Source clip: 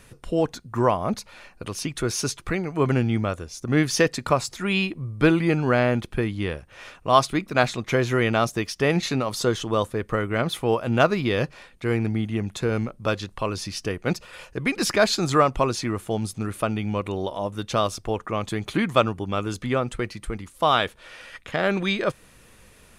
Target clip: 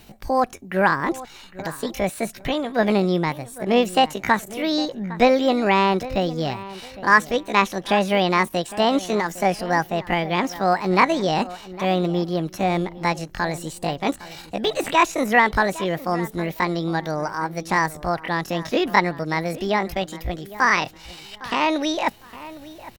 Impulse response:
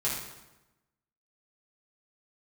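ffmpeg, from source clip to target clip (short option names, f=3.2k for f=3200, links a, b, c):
-filter_complex "[0:a]asetrate=70004,aresample=44100,atempo=0.629961,acrossover=split=3700[a][b];[b]acompressor=threshold=-38dB:ratio=4:attack=1:release=60[c];[a][c]amix=inputs=2:normalize=0,asplit=2[d][e];[e]adelay=808,lowpass=f=2.7k:p=1,volume=-16.5dB,asplit=2[f][g];[g]adelay=808,lowpass=f=2.7k:p=1,volume=0.26,asplit=2[h][i];[i]adelay=808,lowpass=f=2.7k:p=1,volume=0.26[j];[d][f][h][j]amix=inputs=4:normalize=0,volume=2.5dB"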